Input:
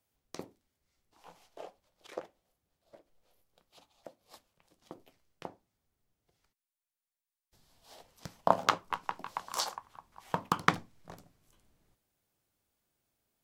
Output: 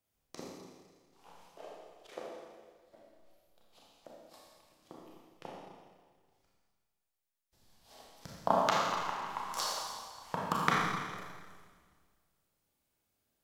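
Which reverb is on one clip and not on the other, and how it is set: Schroeder reverb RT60 1.6 s, combs from 28 ms, DRR -4 dB; trim -5 dB

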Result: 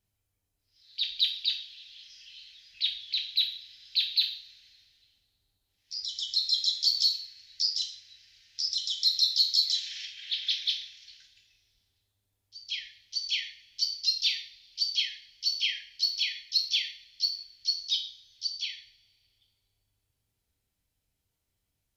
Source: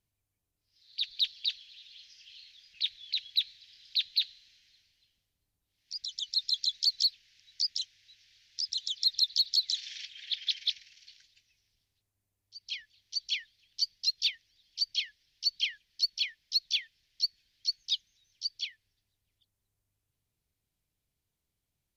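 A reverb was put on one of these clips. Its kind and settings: two-slope reverb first 0.47 s, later 2.3 s, from -27 dB, DRR -0.5 dB

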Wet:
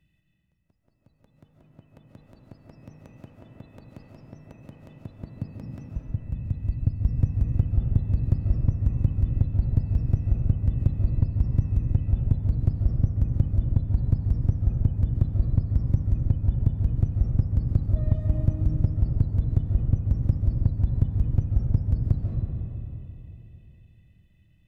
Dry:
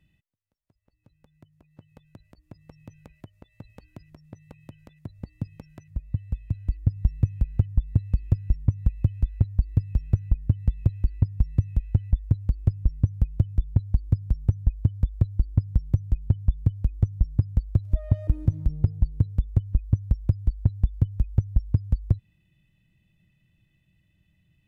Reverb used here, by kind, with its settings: algorithmic reverb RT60 3.2 s, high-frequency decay 0.4×, pre-delay 105 ms, DRR -0.5 dB; trim -2 dB

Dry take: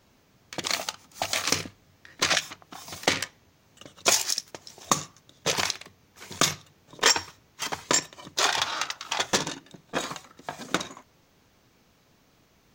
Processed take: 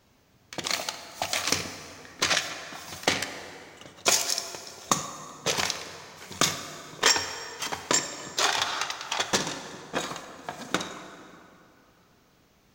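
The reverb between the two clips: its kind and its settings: plate-style reverb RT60 2.9 s, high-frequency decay 0.6×, DRR 7.5 dB; trim -1 dB

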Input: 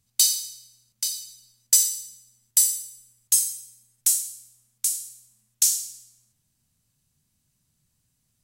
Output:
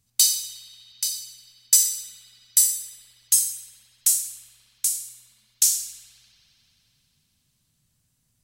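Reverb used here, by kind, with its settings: spring tank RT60 3.9 s, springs 59 ms, chirp 30 ms, DRR 8 dB; trim +1 dB

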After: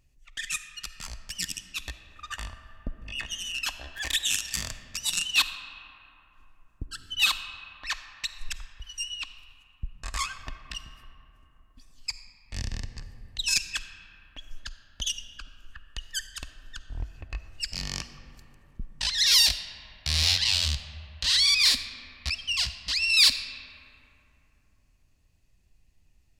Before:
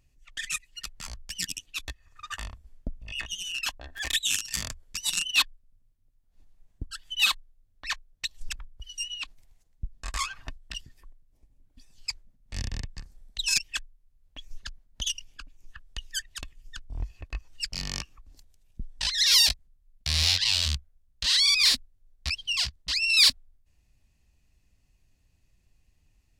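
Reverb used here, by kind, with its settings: algorithmic reverb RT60 3.4 s, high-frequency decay 0.4×, pre-delay 10 ms, DRR 10 dB

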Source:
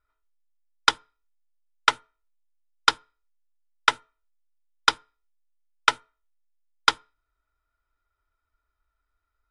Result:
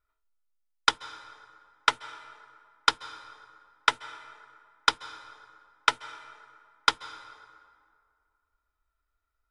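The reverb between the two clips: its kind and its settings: plate-style reverb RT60 2.2 s, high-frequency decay 0.55×, pre-delay 120 ms, DRR 16 dB; trim -3 dB

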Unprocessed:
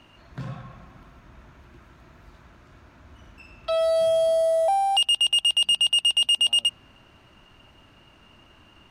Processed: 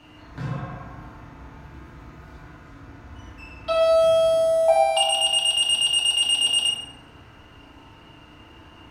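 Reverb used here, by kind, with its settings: FDN reverb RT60 1.6 s, low-frequency decay 0.9×, high-frequency decay 0.35×, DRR -6.5 dB; trim -1 dB

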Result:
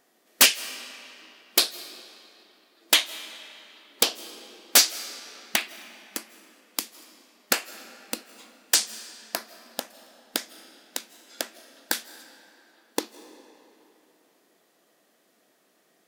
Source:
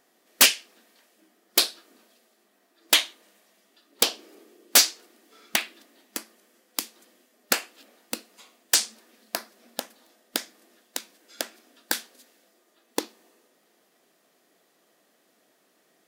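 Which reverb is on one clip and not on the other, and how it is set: algorithmic reverb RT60 3.2 s, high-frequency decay 0.75×, pre-delay 120 ms, DRR 14.5 dB

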